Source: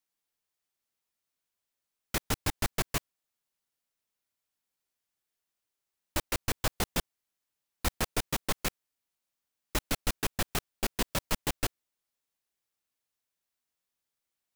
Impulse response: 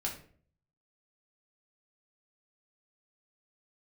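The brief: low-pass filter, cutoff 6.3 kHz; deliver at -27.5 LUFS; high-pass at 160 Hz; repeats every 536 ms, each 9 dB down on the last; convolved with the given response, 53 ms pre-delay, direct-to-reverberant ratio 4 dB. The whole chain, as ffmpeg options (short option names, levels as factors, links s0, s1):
-filter_complex "[0:a]highpass=160,lowpass=6300,aecho=1:1:536|1072|1608|2144:0.355|0.124|0.0435|0.0152,asplit=2[s0][s1];[1:a]atrim=start_sample=2205,adelay=53[s2];[s1][s2]afir=irnorm=-1:irlink=0,volume=0.473[s3];[s0][s3]amix=inputs=2:normalize=0,volume=2.51"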